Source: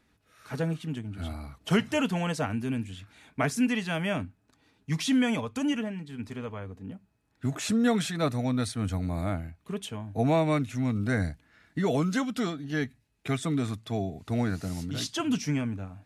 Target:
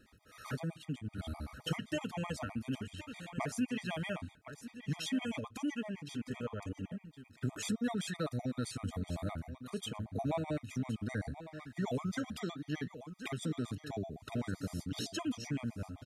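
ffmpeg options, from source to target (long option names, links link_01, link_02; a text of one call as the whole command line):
ffmpeg -i in.wav -af "acompressor=threshold=-45dB:ratio=2.5,aecho=1:1:1065:0.266,afftfilt=real='re*gt(sin(2*PI*7.8*pts/sr)*(1-2*mod(floor(b*sr/1024/630),2)),0)':imag='im*gt(sin(2*PI*7.8*pts/sr)*(1-2*mod(floor(b*sr/1024/630),2)),0)':win_size=1024:overlap=0.75,volume=6.5dB" out.wav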